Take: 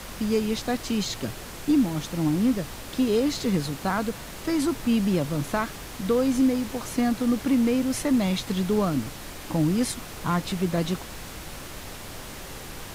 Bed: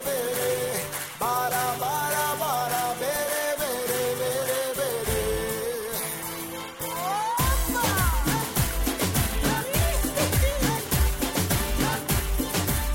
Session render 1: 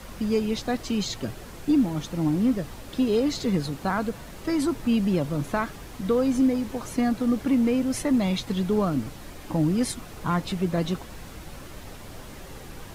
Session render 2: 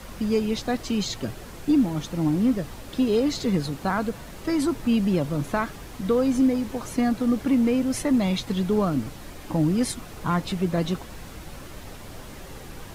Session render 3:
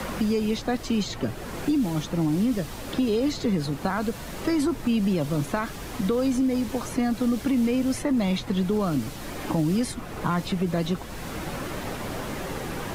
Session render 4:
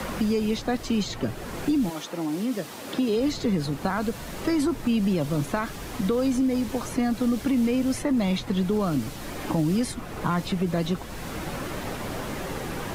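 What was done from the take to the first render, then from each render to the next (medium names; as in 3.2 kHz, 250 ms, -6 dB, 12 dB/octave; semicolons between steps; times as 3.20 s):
noise reduction 7 dB, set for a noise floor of -39 dBFS
trim +1 dB
peak limiter -16.5 dBFS, peak gain reduction 4 dB; three bands compressed up and down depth 70%
1.89–3.15 s: high-pass 440 Hz -> 150 Hz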